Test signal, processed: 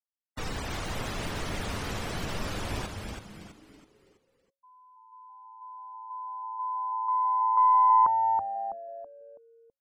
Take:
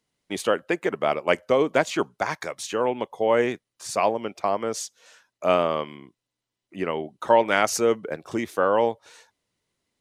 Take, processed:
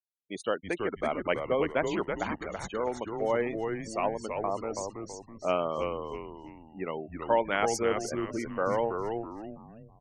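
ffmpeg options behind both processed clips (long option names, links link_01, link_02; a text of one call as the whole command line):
ffmpeg -i in.wav -filter_complex "[0:a]afftfilt=real='re*gte(hypot(re,im),0.0355)':imag='im*gte(hypot(re,im),0.0355)':win_size=1024:overlap=0.75,aeval=exprs='0.631*(cos(1*acos(clip(val(0)/0.631,-1,1)))-cos(1*PI/2))+0.0141*(cos(2*acos(clip(val(0)/0.631,-1,1)))-cos(2*PI/2))+0.00398*(cos(3*acos(clip(val(0)/0.631,-1,1)))-cos(3*PI/2))':channel_layout=same,asplit=6[link_01][link_02][link_03][link_04][link_05][link_06];[link_02]adelay=327,afreqshift=-110,volume=-5dB[link_07];[link_03]adelay=654,afreqshift=-220,volume=-13.2dB[link_08];[link_04]adelay=981,afreqshift=-330,volume=-21.4dB[link_09];[link_05]adelay=1308,afreqshift=-440,volume=-29.5dB[link_10];[link_06]adelay=1635,afreqshift=-550,volume=-37.7dB[link_11];[link_01][link_07][link_08][link_09][link_10][link_11]amix=inputs=6:normalize=0,volume=-7.5dB" out.wav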